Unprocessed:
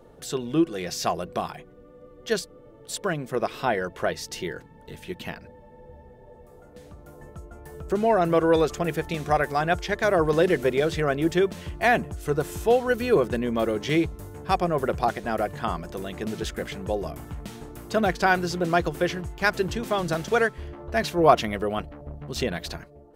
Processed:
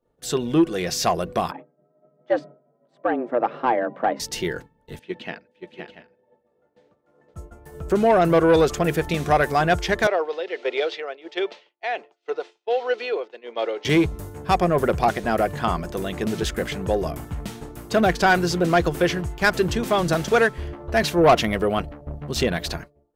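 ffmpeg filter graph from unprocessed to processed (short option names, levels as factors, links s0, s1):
-filter_complex "[0:a]asettb=1/sr,asplit=3[s0][s1][s2];[s0]atrim=end=1.514[s3];[s1]atrim=start=1.51:end=4.2,asetpts=PTS-STARTPTS,afade=t=in:d=0.004:c=qsin,afade=t=out:st=2.686:d=0.004:c=qsin,lowpass=1200,afreqshift=120[s4];[s2]atrim=start=4.196[s5];[s3][s4]acrossfade=d=0.004:c1=hsin:c2=qsin[s6];[s6][s5]acrossfade=d=0.004:c1=qsin:c2=hsin,asettb=1/sr,asplit=3[s7][s8][s9];[s7]atrim=end=4.994[s10];[s8]atrim=start=4.99:end=7.34,asetpts=PTS-STARTPTS,afade=t=in:d=0.004:c=qsin,afade=t=out:st=2.346:d=0.004:c=qsin,adynamicequalizer=threshold=0.00158:dfrequency=1000:dqfactor=1.5:tfrequency=1000:tqfactor=1.5:attack=5:release=100:ratio=0.375:range=3.5:mode=cutabove:tftype=bell,highpass=240,lowpass=3800,aecho=1:1:521|682|724:0.501|0.398|0.15,atrim=end_sample=103635[s11];[s9]atrim=start=7.336[s12];[s10][s11]acrossfade=d=0.004:c1=hsin:c2=qsin[s13];[s13][s12]acrossfade=d=0.004:c1=qsin:c2=hsin,asettb=1/sr,asplit=3[s14][s15][s16];[s14]atrim=end=10.074[s17];[s15]atrim=start=10.07:end=13.85,asetpts=PTS-STARTPTS,afade=t=in:d=0.004:c=qsin,afade=t=out:st=3.776:d=0.004:c=qsin,tremolo=f=1.4:d=0.66,highpass=f=480:w=0.5412,highpass=f=480:w=1.3066,equalizer=f=610:t=q:w=4:g=-5,equalizer=f=1100:t=q:w=4:g=-8,equalizer=f=1600:t=q:w=4:g=-8,lowpass=f=4500:w=0.5412,lowpass=f=4500:w=1.3066[s18];[s16]atrim=start=13.846[s19];[s17][s18]acrossfade=d=0.004:c1=hsin:c2=qsin[s20];[s20][s19]acrossfade=d=0.004:c1=qsin:c2=hsin,acontrast=46,agate=range=0.0224:threshold=0.0316:ratio=3:detection=peak,acontrast=67,volume=0.473"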